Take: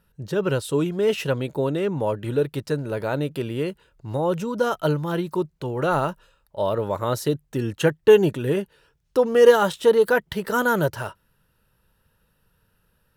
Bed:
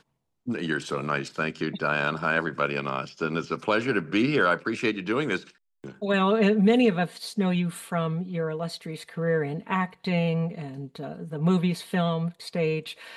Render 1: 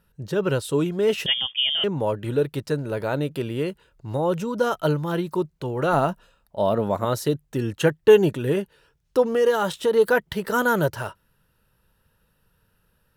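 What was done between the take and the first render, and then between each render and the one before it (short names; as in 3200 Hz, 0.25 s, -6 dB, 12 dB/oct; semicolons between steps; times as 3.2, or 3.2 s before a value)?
1.26–1.84 inverted band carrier 3400 Hz; 5.93–7.05 small resonant body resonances 220/700 Hz, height 9 dB; 9.22–9.94 compressor 2:1, threshold -20 dBFS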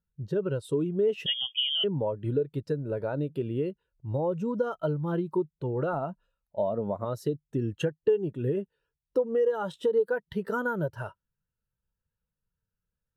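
compressor 8:1, threshold -24 dBFS, peak gain reduction 15.5 dB; spectral expander 1.5:1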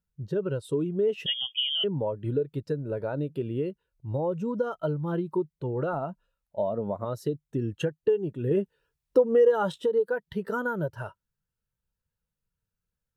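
8.51–9.78 gain +5.5 dB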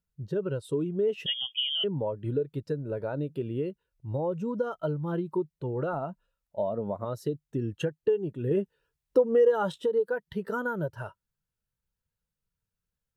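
gain -1.5 dB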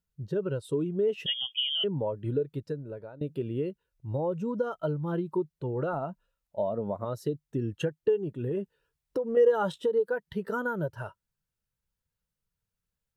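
2.48–3.21 fade out, to -19 dB; 8.17–9.37 compressor 3:1, threshold -28 dBFS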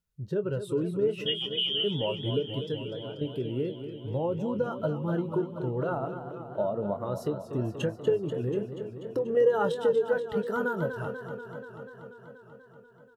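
doubler 24 ms -12.5 dB; warbling echo 0.242 s, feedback 75%, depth 105 cents, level -10 dB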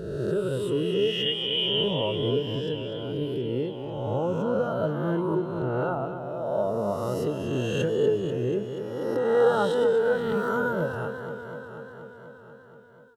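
spectral swells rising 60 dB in 1.59 s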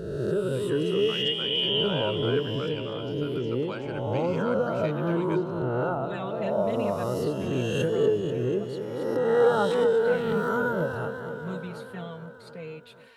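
add bed -14 dB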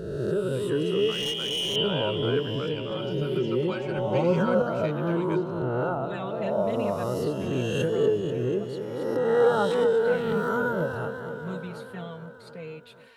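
1.11–1.76 hard clip -25.5 dBFS; 2.9–4.62 comb 5.4 ms, depth 99%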